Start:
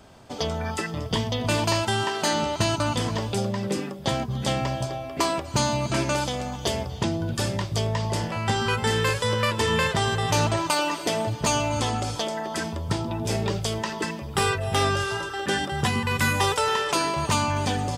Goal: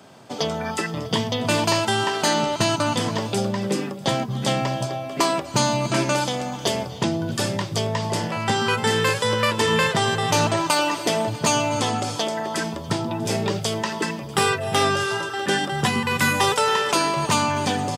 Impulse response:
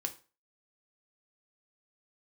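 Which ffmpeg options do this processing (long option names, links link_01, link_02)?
-af "highpass=frequency=120:width=0.5412,highpass=frequency=120:width=1.3066,aecho=1:1:645:0.075,volume=3.5dB"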